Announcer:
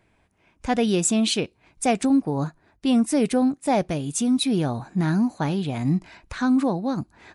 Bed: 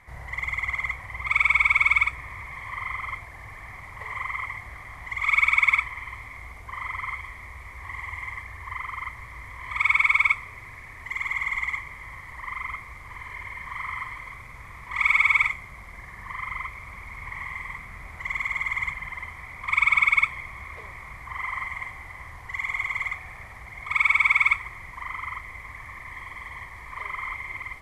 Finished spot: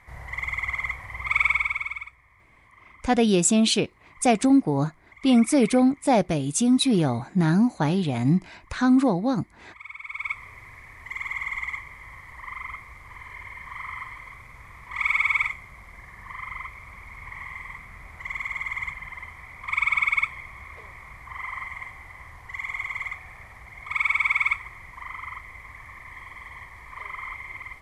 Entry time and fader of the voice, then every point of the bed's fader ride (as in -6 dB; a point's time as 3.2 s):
2.40 s, +1.5 dB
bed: 1.46 s -0.5 dB
2.17 s -20 dB
10.01 s -20 dB
10.44 s -3 dB